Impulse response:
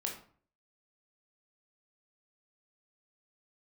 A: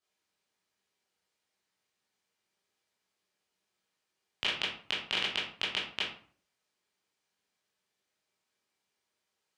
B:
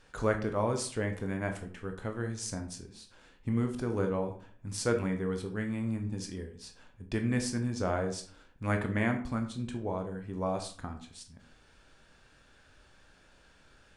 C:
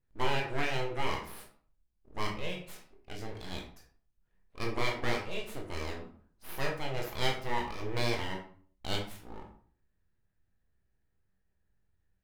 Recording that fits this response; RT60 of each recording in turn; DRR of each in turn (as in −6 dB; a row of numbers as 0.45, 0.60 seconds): C; 0.50, 0.45, 0.50 seconds; −7.5, 4.5, 0.0 decibels